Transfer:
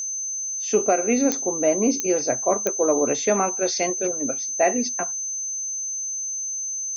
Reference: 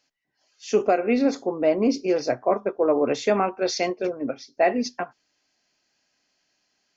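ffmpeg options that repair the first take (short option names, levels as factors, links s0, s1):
-af "adeclick=t=4,bandreject=f=6200:w=30"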